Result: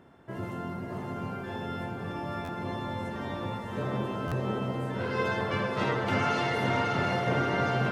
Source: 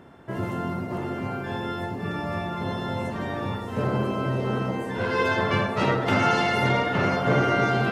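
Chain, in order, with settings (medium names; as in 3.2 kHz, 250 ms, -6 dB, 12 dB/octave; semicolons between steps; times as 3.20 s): echo that smears into a reverb 587 ms, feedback 43%, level -4 dB; buffer glitch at 2.44/4.27 s, samples 512, times 3; trim -7 dB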